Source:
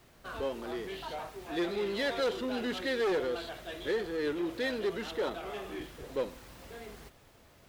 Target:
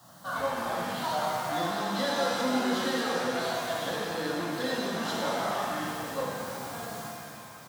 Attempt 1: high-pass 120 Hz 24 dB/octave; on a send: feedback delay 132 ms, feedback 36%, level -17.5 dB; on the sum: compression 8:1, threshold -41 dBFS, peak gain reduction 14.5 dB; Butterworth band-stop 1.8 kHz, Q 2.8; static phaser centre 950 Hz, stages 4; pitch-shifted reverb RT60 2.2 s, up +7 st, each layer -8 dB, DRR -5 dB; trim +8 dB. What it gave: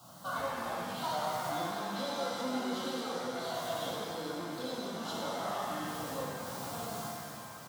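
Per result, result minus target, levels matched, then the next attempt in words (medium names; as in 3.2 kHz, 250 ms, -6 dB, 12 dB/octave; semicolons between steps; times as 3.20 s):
compression: peak gain reduction +7.5 dB; 2 kHz band -2.5 dB
high-pass 120 Hz 24 dB/octave; on a send: feedback delay 132 ms, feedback 36%, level -17.5 dB; on the sum: compression 8:1, threshold -32.5 dBFS, peak gain reduction 7 dB; Butterworth band-stop 1.8 kHz, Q 2.8; static phaser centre 950 Hz, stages 4; pitch-shifted reverb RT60 2.2 s, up +7 st, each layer -8 dB, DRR -5 dB; trim +8 dB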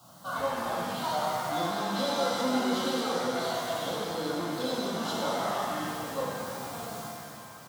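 2 kHz band -3.0 dB
high-pass 120 Hz 24 dB/octave; on a send: feedback delay 132 ms, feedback 36%, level -17.5 dB; on the sum: compression 8:1, threshold -32.5 dBFS, peak gain reduction 7 dB; static phaser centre 950 Hz, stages 4; pitch-shifted reverb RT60 2.2 s, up +7 st, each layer -8 dB, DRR -5 dB; trim +8 dB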